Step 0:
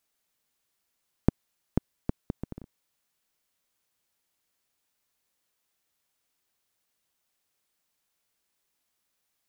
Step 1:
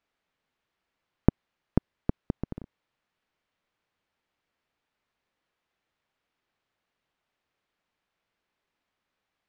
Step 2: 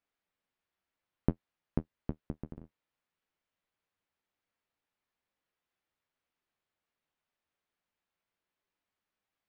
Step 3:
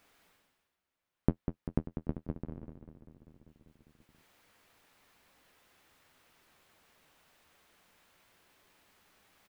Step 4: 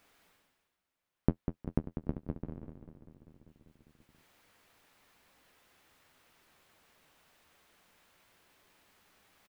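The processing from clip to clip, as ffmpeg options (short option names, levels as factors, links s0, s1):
-af "lowpass=2700,volume=1.5"
-af "flanger=delay=9.9:depth=3.2:regen=-37:speed=0.22:shape=triangular,volume=0.631"
-af "aecho=1:1:196|392|588|784|980|1176|1372|1568:0.376|0.226|0.135|0.0812|0.0487|0.0292|0.0175|0.0105,areverse,acompressor=mode=upward:threshold=0.00316:ratio=2.5,areverse,volume=1.12"
-af "aecho=1:1:361:0.075"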